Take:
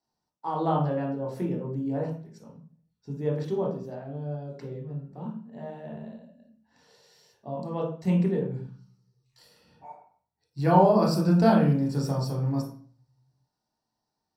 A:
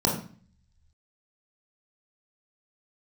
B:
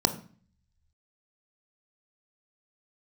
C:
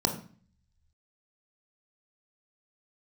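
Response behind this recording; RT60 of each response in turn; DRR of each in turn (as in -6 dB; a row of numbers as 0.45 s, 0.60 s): A; 0.45 s, 0.45 s, 0.45 s; -2.5 dB, 8.0 dB, 3.5 dB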